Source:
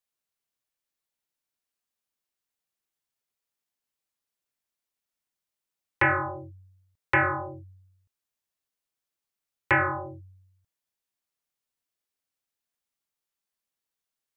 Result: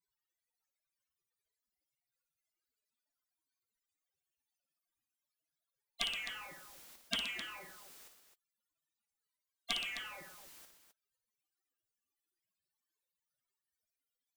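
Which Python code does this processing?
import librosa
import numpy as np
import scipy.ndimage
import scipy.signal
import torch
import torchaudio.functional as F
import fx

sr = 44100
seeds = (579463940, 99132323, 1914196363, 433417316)

y = fx.spec_gate(x, sr, threshold_db=-30, keep='weak')
y = fx.echo_multitap(y, sr, ms=(57, 122, 260), db=(-10.0, -14.0, -13.5))
y = fx.power_curve(y, sr, exponent=0.7)
y = y * 10.0 ** (13.0 / 20.0)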